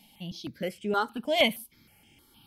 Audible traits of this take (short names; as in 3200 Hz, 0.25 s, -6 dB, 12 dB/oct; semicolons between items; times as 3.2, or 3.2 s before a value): notches that jump at a steady rate 6.4 Hz 350–4100 Hz